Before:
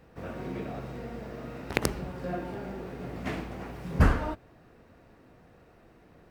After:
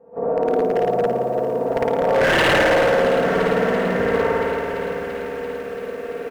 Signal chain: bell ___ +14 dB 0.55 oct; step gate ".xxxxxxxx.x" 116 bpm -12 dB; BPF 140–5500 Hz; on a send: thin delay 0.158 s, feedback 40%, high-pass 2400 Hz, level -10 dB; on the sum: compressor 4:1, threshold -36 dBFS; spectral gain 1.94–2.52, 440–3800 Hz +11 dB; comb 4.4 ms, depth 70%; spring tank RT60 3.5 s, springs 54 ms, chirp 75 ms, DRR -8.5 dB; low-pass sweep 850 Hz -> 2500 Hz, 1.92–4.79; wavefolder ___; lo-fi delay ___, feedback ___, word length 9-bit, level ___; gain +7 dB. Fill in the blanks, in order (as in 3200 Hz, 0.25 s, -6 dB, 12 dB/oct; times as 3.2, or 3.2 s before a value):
490 Hz, -18.5 dBFS, 0.339 s, 80%, -11 dB